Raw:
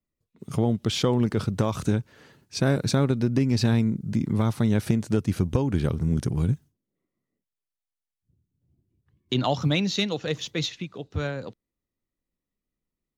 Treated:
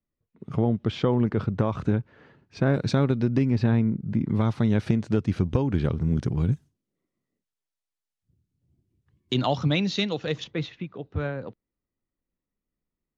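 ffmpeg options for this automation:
ffmpeg -i in.wav -af "asetnsamples=nb_out_samples=441:pad=0,asendcmd='2.74 lowpass f 4000;3.5 lowpass f 2100;4.29 lowpass f 4000;6.52 lowpass f 9800;9.45 lowpass f 4700;10.44 lowpass f 2100',lowpass=2200" out.wav

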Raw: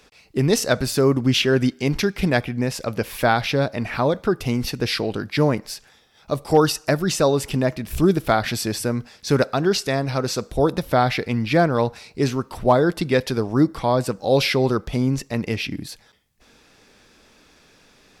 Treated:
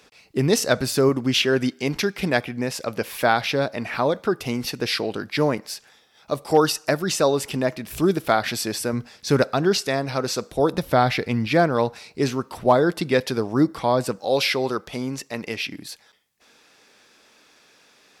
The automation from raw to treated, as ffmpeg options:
ffmpeg -i in.wav -af "asetnsamples=nb_out_samples=441:pad=0,asendcmd='1.09 highpass f 260;8.93 highpass f 78;9.82 highpass f 220;10.74 highpass f 61;11.47 highpass f 170;14.19 highpass f 510',highpass=frequency=120:poles=1" out.wav

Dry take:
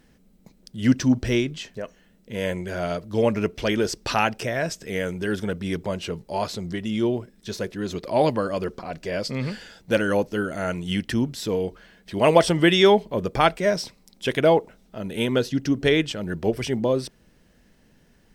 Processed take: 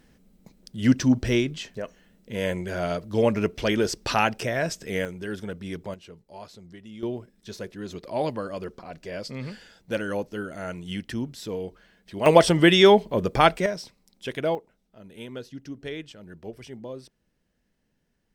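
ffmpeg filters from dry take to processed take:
ffmpeg -i in.wav -af "asetnsamples=nb_out_samples=441:pad=0,asendcmd='5.05 volume volume -7dB;5.94 volume volume -16dB;7.03 volume volume -7dB;12.26 volume volume 1dB;13.66 volume volume -8dB;14.55 volume volume -15.5dB',volume=-0.5dB" out.wav

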